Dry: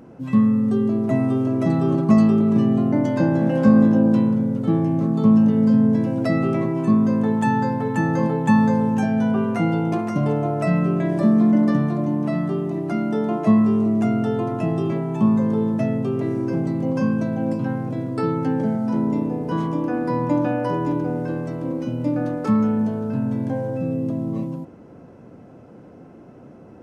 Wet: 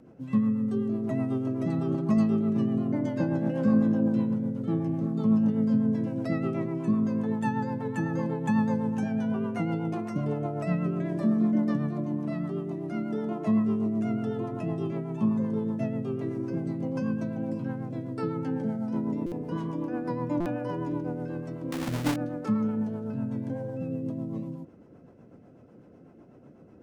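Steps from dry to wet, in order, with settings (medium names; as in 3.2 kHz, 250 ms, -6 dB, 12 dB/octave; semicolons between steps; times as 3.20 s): 21.72–22.16 s: square wave that keeps the level; rotary cabinet horn 8 Hz; buffer glitch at 19.26/20.40 s, samples 256, times 9; trim -7 dB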